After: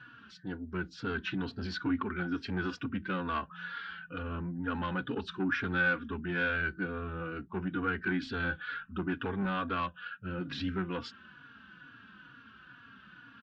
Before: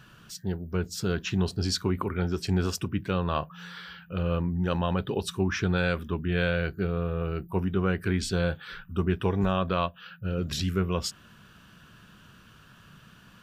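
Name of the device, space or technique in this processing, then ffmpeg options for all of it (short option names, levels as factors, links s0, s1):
barber-pole flanger into a guitar amplifier: -filter_complex "[0:a]asplit=2[s0][s1];[s1]adelay=3.6,afreqshift=-2.2[s2];[s0][s2]amix=inputs=2:normalize=1,asoftclip=type=tanh:threshold=0.0596,highpass=90,equalizer=f=100:t=q:w=4:g=-9,equalizer=f=160:t=q:w=4:g=-8,equalizer=f=270:t=q:w=4:g=9,equalizer=f=410:t=q:w=4:g=-5,equalizer=f=620:t=q:w=4:g=-9,equalizer=f=1500:t=q:w=4:g=10,lowpass=f=3800:w=0.5412,lowpass=f=3800:w=1.3066,asettb=1/sr,asplit=3[s3][s4][s5];[s3]atrim=end=4.224[s6];[s4]atrim=start=4.22:end=4.75,asetpts=PTS-STARTPTS,afade=t=in:d=0.004:c=qsin,afade=t=out:st=0.526:d=0.004:c=qsin,aemphasis=mode=reproduction:type=75kf[s7];[s5]atrim=start=4.746[s8];[s6][s7]acrossfade=d=0.004:c1=hsin:c2=qsin[s9];[s9][s8]acrossfade=d=0.004:c1=qsin:c2=hsin"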